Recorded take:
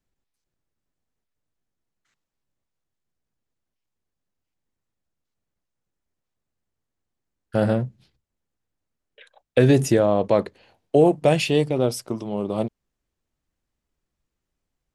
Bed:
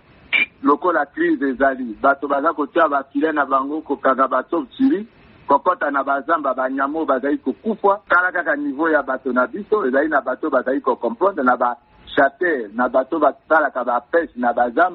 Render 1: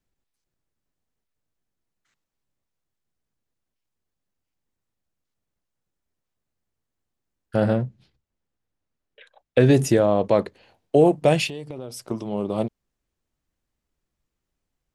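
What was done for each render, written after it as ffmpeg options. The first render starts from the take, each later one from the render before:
-filter_complex "[0:a]asettb=1/sr,asplit=3[a][b][c];[a]atrim=end=7.564[d];[b]atrim=start=7.56:end=9.71,asetpts=PTS-STARTPTS,afade=t=in:d=0.004:c=qsin,afade=t=out:st=2.146:d=0.004:c=qsin,highshelf=f=8.8k:g=-11.5[e];[c]atrim=start=9.706[f];[d][e]acrossfade=d=0.004:c1=hsin:c2=qsin[g];[g][f]acrossfade=d=0.004:c1=qsin:c2=hsin,asettb=1/sr,asplit=3[h][i][j];[h]atrim=end=11.474[k];[i]atrim=start=11.47:end=12.11,asetpts=PTS-STARTPTS,afade=t=in:d=0.004:c=qsin,afade=t=out:st=0.636:d=0.004:c=qsin,acompressor=threshold=-32dB:ratio=5:attack=3.2:release=140:knee=1:detection=peak[l];[j]atrim=start=12.106[m];[k][l]acrossfade=d=0.004:c1=hsin:c2=qsin[n];[n][m]acrossfade=d=0.004:c1=qsin:c2=hsin"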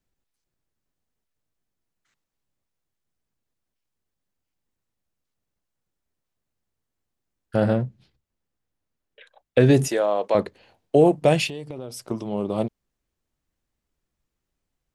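-filter_complex "[0:a]asettb=1/sr,asplit=3[a][b][c];[a]atrim=end=9.884[d];[b]atrim=start=9.88:end=10.35,asetpts=PTS-STARTPTS,afade=t=in:d=0.004:c=qsin,afade=t=out:st=0.466:d=0.004:c=qsin,highpass=520[e];[c]atrim=start=10.346[f];[d][e]acrossfade=d=0.004:c1=hsin:c2=qsin[g];[g][f]acrossfade=d=0.004:c1=qsin:c2=hsin"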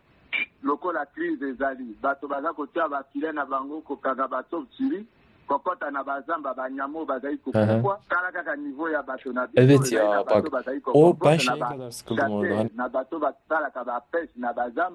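-filter_complex "[1:a]volume=-10dB[a];[0:a][a]amix=inputs=2:normalize=0"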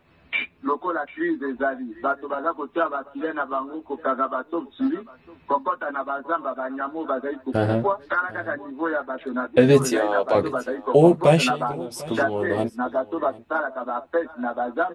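-filter_complex "[0:a]asplit=2[a][b];[b]adelay=12,volume=-3dB[c];[a][c]amix=inputs=2:normalize=0,aecho=1:1:746:0.1"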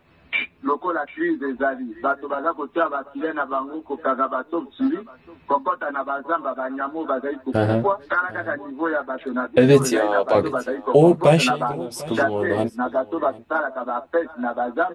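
-af "volume=2dB,alimiter=limit=-3dB:level=0:latency=1"

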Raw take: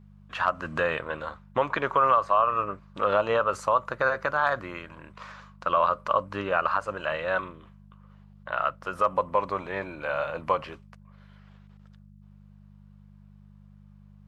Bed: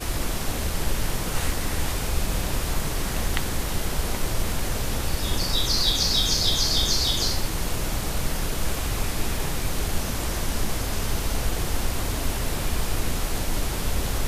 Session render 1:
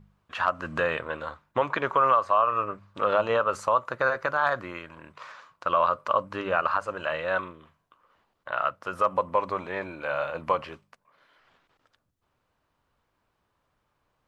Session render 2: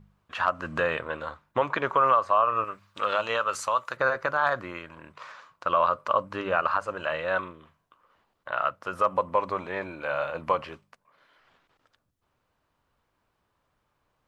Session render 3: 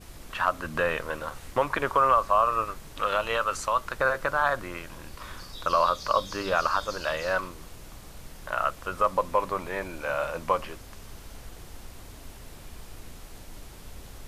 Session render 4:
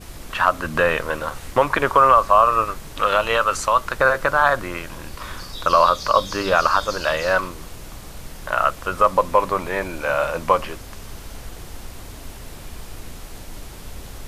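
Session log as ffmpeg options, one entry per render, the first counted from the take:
-af "bandreject=f=50:t=h:w=4,bandreject=f=100:t=h:w=4,bandreject=f=150:t=h:w=4,bandreject=f=200:t=h:w=4"
-filter_complex "[0:a]asettb=1/sr,asplit=3[a][b][c];[a]atrim=end=2.644[d];[b]atrim=start=2.64:end=3.97,asetpts=PTS-STARTPTS,afade=t=in:d=0.004:c=qsin,afade=t=out:st=1.326:d=0.004:c=qsin,tiltshelf=f=1.4k:g=-8[e];[c]atrim=start=3.966[f];[d][e]acrossfade=d=0.004:c1=hsin:c2=qsin[g];[g][f]acrossfade=d=0.004:c1=qsin:c2=hsin"
-filter_complex "[1:a]volume=-18.5dB[a];[0:a][a]amix=inputs=2:normalize=0"
-af "volume=8dB,alimiter=limit=-3dB:level=0:latency=1"

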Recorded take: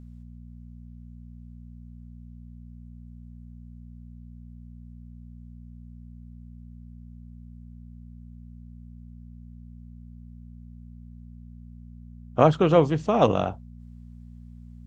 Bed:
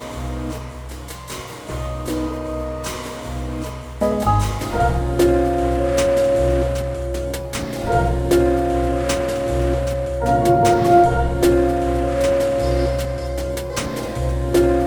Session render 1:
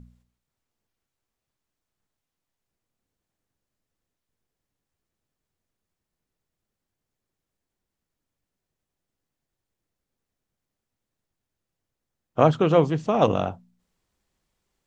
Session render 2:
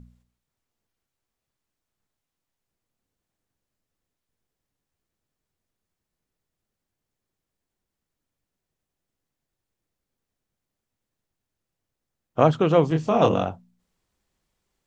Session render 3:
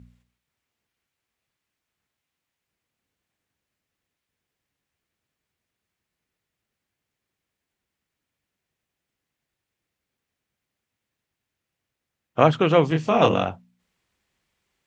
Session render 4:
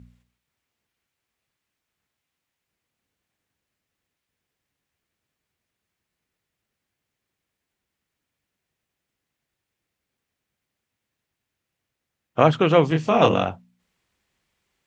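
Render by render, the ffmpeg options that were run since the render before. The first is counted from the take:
-af "bandreject=f=60:t=h:w=4,bandreject=f=120:t=h:w=4,bandreject=f=180:t=h:w=4,bandreject=f=240:t=h:w=4"
-filter_complex "[0:a]asettb=1/sr,asplit=3[a][b][c];[a]atrim=end=12.884[d];[b]atrim=start=12.88:end=13.44,asetpts=PTS-STARTPTS,afade=t=in:d=0.004:c=qsin,afade=t=out:st=0.556:d=0.004:c=qsin,asplit=2[e][f];[f]adelay=25,volume=-4dB[g];[e][g]amix=inputs=2:normalize=0,atrim=end_sample=24696[h];[c]atrim=start=13.436[i];[d][h]acrossfade=d=0.004:c1=hsin:c2=qsin[j];[j][i]acrossfade=d=0.004:c1=qsin:c2=hsin"
-af "highpass=50,equalizer=f=2.3k:w=0.9:g=8"
-af "volume=1dB,alimiter=limit=-2dB:level=0:latency=1"

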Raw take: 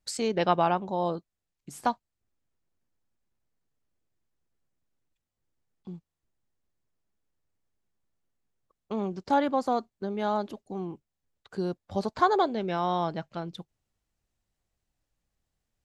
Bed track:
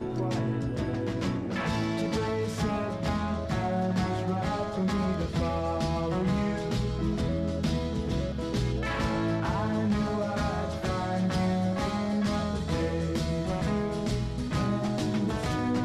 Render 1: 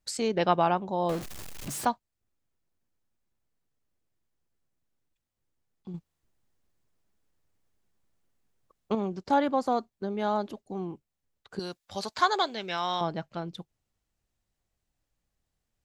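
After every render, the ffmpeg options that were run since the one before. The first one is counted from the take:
-filter_complex "[0:a]asettb=1/sr,asplit=3[a][b][c];[a]atrim=end=1.094[d];[b]atrim=start=1.09:end=1.85,asetpts=PTS-STARTPTS,afade=t=in:d=0.004:c=qsin,afade=t=out:st=0.756:d=0.004:c=qsin,aeval=exprs='val(0)+0.5*0.0237*sgn(val(0))':c=same[e];[c]atrim=start=1.846[f];[d][e]acrossfade=d=0.004:c1=hsin:c2=qsin[g];[g][f]acrossfade=d=0.004:c1=qsin:c2=hsin,asettb=1/sr,asplit=3[h][i][j];[h]atrim=end=5.944[k];[i]atrim=start=5.94:end=8.95,asetpts=PTS-STARTPTS,afade=t=in:d=0.004:c=qsin,afade=t=out:st=3.006:d=0.004:c=qsin,acontrast=46[l];[j]atrim=start=8.946[m];[k][l]acrossfade=d=0.004:c1=hsin:c2=qsin[n];[n][m]acrossfade=d=0.004:c1=qsin:c2=hsin,asettb=1/sr,asplit=3[o][p][q];[o]atrim=end=11.594[r];[p]atrim=start=11.59:end=13.01,asetpts=PTS-STARTPTS,afade=t=in:d=0.004:c=qsin,afade=t=out:st=1.416:d=0.004:c=qsin,tiltshelf=f=1.1k:g=-10[s];[q]atrim=start=13.006[t];[r][s]acrossfade=d=0.004:c1=hsin:c2=qsin[u];[u][t]acrossfade=d=0.004:c1=qsin:c2=hsin"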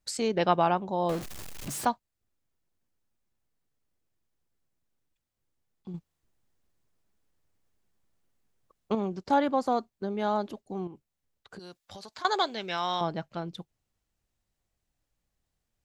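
-filter_complex "[0:a]asettb=1/sr,asplit=3[a][b][c];[a]atrim=end=10.874[d];[b]atrim=start=10.87:end=12.25,asetpts=PTS-STARTPTS,afade=t=in:d=0.004:c=qsin,afade=t=out:st=1.376:d=0.004:c=qsin,acompressor=threshold=-41dB:ratio=6:attack=3.2:release=140:knee=1:detection=peak[e];[c]atrim=start=12.246[f];[d][e]acrossfade=d=0.004:c1=hsin:c2=qsin[g];[g][f]acrossfade=d=0.004:c1=qsin:c2=hsin"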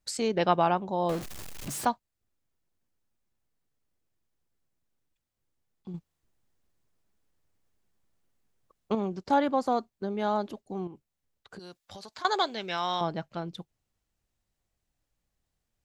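-af anull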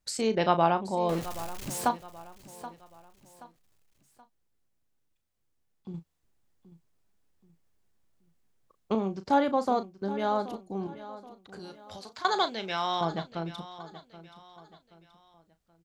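-filter_complex "[0:a]asplit=2[a][b];[b]adelay=36,volume=-11dB[c];[a][c]amix=inputs=2:normalize=0,aecho=1:1:777|1554|2331:0.168|0.0655|0.0255"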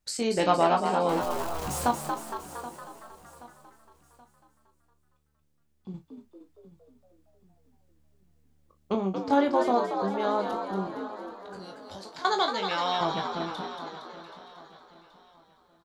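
-filter_complex "[0:a]asplit=2[a][b];[b]adelay=21,volume=-6.5dB[c];[a][c]amix=inputs=2:normalize=0,asplit=9[d][e][f][g][h][i][j][k][l];[e]adelay=231,afreqshift=74,volume=-6.5dB[m];[f]adelay=462,afreqshift=148,volume=-11.2dB[n];[g]adelay=693,afreqshift=222,volume=-16dB[o];[h]adelay=924,afreqshift=296,volume=-20.7dB[p];[i]adelay=1155,afreqshift=370,volume=-25.4dB[q];[j]adelay=1386,afreqshift=444,volume=-30.2dB[r];[k]adelay=1617,afreqshift=518,volume=-34.9dB[s];[l]adelay=1848,afreqshift=592,volume=-39.6dB[t];[d][m][n][o][p][q][r][s][t]amix=inputs=9:normalize=0"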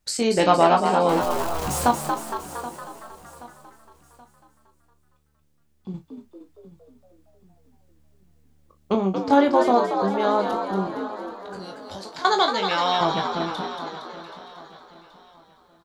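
-af "volume=6dB,alimiter=limit=-3dB:level=0:latency=1"

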